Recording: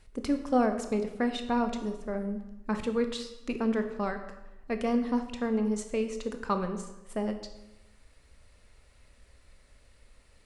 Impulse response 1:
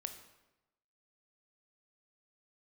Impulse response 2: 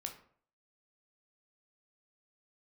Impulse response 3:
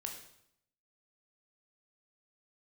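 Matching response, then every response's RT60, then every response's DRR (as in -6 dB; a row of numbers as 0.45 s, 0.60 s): 1; 1.0 s, 0.55 s, 0.75 s; 7.0 dB, 3.0 dB, 2.0 dB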